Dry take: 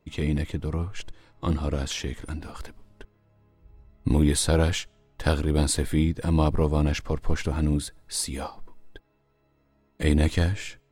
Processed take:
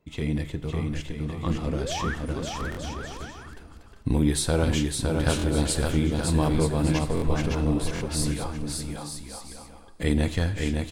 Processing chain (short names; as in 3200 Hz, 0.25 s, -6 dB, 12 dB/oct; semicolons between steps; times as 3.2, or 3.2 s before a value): painted sound rise, 1.67–2.15, 210–1900 Hz -31 dBFS; bouncing-ball echo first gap 0.56 s, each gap 0.65×, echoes 5; on a send at -12 dB: reverb, pre-delay 3 ms; on the sum: stuck buffer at 2.7/5.37/7.15/7.94, samples 1024, times 2; gain -2 dB